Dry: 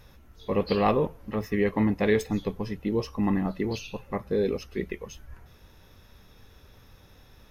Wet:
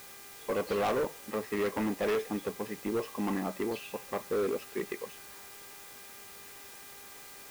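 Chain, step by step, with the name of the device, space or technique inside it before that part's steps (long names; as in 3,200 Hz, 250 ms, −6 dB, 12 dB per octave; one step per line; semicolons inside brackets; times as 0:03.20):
aircraft radio (band-pass filter 310–2,500 Hz; hard clipping −26.5 dBFS, distortion −8 dB; hum with harmonics 400 Hz, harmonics 6, −57 dBFS 0 dB per octave; white noise bed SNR 15 dB)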